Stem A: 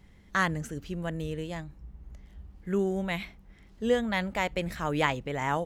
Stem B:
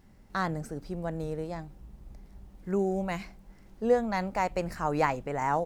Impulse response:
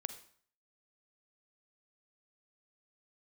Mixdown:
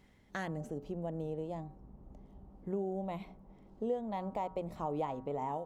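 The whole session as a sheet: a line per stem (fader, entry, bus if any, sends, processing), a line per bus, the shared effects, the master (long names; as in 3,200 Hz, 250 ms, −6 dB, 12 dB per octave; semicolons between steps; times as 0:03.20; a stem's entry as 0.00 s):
−3.0 dB, 0.00 s, no send, automatic ducking −11 dB, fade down 0.70 s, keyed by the second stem
−1.5 dB, 0.00 s, no send, low-pass filter 1,100 Hz 24 dB per octave; automatic gain control gain up to 9 dB; tuned comb filter 86 Hz, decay 0.47 s, harmonics odd, mix 60%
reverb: not used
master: low-shelf EQ 82 Hz −10 dB; mains-hum notches 60/120/180 Hz; downward compressor 2.5 to 1, threshold −37 dBFS, peak gain reduction 13 dB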